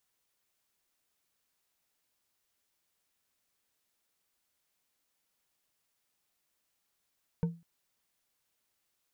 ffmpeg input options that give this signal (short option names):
-f lavfi -i "aevalsrc='0.0708*pow(10,-3*t/0.3)*sin(2*PI*168*t)+0.0237*pow(10,-3*t/0.148)*sin(2*PI*463.2*t)+0.00794*pow(10,-3*t/0.092)*sin(2*PI*907.9*t)+0.00266*pow(10,-3*t/0.065)*sin(2*PI*1500.7*t)+0.000891*pow(10,-3*t/0.049)*sin(2*PI*2241.1*t)':d=0.2:s=44100"